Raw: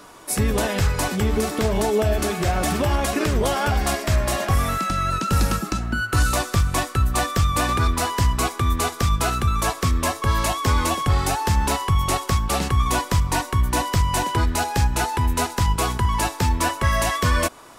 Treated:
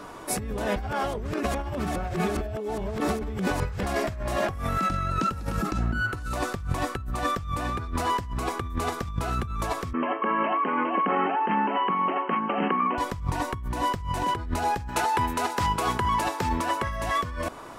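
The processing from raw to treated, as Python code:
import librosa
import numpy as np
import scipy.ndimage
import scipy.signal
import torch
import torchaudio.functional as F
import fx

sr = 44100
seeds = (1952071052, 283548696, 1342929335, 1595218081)

y = fx.brickwall_bandpass(x, sr, low_hz=180.0, high_hz=3200.0, at=(9.93, 12.98))
y = fx.highpass(y, sr, hz=fx.line((14.87, 670.0), (16.88, 210.0)), slope=6, at=(14.87, 16.88), fade=0.02)
y = fx.edit(y, sr, fx.reverse_span(start_s=0.76, length_s=3.07), tone=tone)
y = fx.high_shelf(y, sr, hz=2800.0, db=-11.0)
y = fx.over_compress(y, sr, threshold_db=-28.0, ratio=-1.0)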